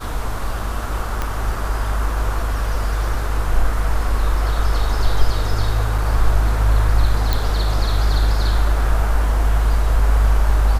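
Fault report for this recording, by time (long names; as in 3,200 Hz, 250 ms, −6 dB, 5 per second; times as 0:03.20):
0:01.22: click −9 dBFS
0:05.98: drop-out 3.4 ms
0:07.33: click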